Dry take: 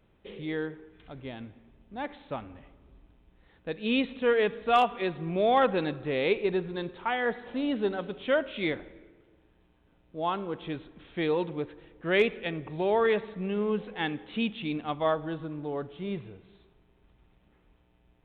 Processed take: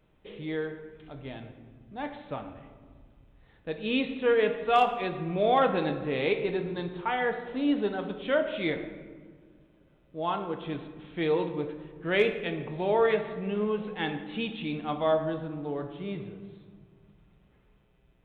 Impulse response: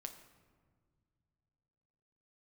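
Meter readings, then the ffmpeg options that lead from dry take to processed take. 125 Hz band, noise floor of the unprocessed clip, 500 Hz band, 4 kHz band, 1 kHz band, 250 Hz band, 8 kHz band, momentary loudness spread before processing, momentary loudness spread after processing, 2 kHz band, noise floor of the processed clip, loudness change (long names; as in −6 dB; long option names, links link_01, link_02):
+1.0 dB, −65 dBFS, +0.5 dB, −0.5 dB, +0.5 dB, 0.0 dB, can't be measured, 16 LU, 18 LU, −0.5 dB, −63 dBFS, +0.5 dB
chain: -filter_complex "[1:a]atrim=start_sample=2205[link_01];[0:a][link_01]afir=irnorm=-1:irlink=0,volume=4dB"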